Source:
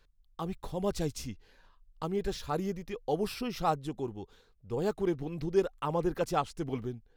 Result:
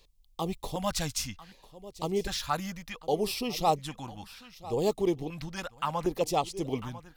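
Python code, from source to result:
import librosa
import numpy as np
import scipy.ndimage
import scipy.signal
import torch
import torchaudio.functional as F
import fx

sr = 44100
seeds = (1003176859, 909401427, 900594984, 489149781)

p1 = fx.low_shelf(x, sr, hz=450.0, db=-10.0)
p2 = p1 + fx.echo_single(p1, sr, ms=997, db=-17.5, dry=0)
p3 = fx.rider(p2, sr, range_db=10, speed_s=2.0)
p4 = fx.filter_lfo_notch(p3, sr, shape='square', hz=0.66, low_hz=400.0, high_hz=1500.0, q=0.74)
y = p4 * librosa.db_to_amplitude(8.0)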